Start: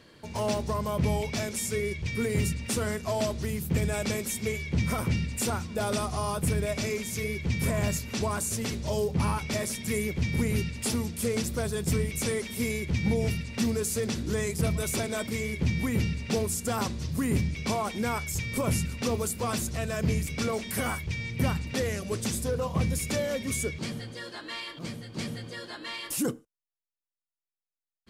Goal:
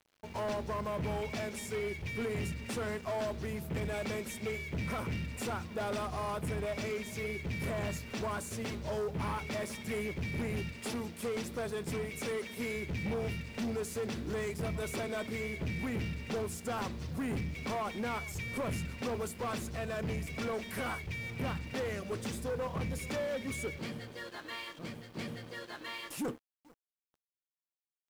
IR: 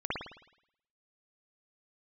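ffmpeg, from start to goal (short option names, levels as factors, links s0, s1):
-filter_complex "[0:a]bass=f=250:g=-5,treble=f=4000:g=-11,asplit=2[s0][s1];[s1]adelay=438,lowpass=f=1100:p=1,volume=0.0794,asplit=2[s2][s3];[s3]adelay=438,lowpass=f=1100:p=1,volume=0.54,asplit=2[s4][s5];[s5]adelay=438,lowpass=f=1100:p=1,volume=0.54,asplit=2[s6][s7];[s7]adelay=438,lowpass=f=1100:p=1,volume=0.54[s8];[s0][s2][s4][s6][s8]amix=inputs=5:normalize=0,aeval=exprs='sgn(val(0))*max(abs(val(0))-0.00282,0)':c=same,asettb=1/sr,asplit=3[s9][s10][s11];[s9]atrim=end=10.724[s12];[s10]atrim=start=10.72:end=12.76,asetpts=PTS-STARTPTS,afade=t=in:d=0.004:c=qsin,afade=t=out:st=2.036:d=0.004:c=qsin,highpass=f=160:p=1[s13];[s11]atrim=start=12.756[s14];[s12][s13]acrossfade=d=0.004:c1=hsin:c2=qsin[s15];[s15][s14]acrossfade=d=0.004:c1=qsin:c2=hsin,asoftclip=type=tanh:threshold=0.0282,acrusher=bits=10:mix=0:aa=0.000001"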